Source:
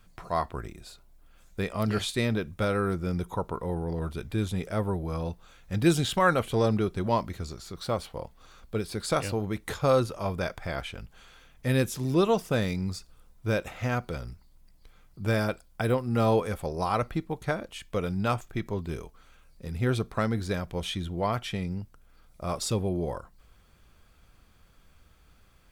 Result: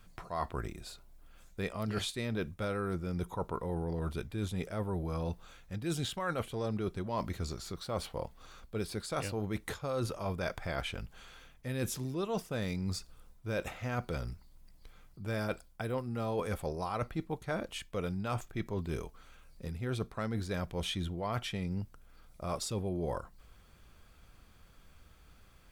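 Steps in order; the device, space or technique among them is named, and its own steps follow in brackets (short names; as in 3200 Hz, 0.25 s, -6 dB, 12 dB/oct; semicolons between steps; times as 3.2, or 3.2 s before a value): compression on the reversed sound (reverse; compressor 12:1, threshold -31 dBFS, peak gain reduction 15.5 dB; reverse)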